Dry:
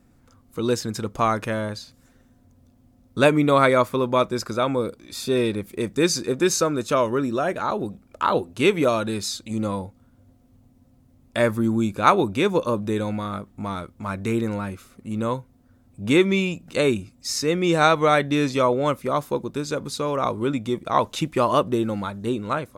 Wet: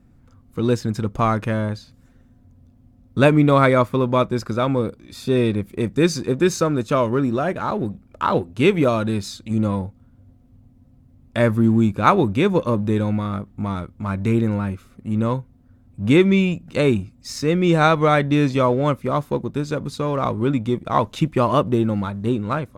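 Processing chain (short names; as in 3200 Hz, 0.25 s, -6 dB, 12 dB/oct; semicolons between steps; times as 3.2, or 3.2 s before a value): tone controls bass +8 dB, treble -6 dB; in parallel at -9 dB: crossover distortion -32 dBFS; on the sum: gain -1.5 dB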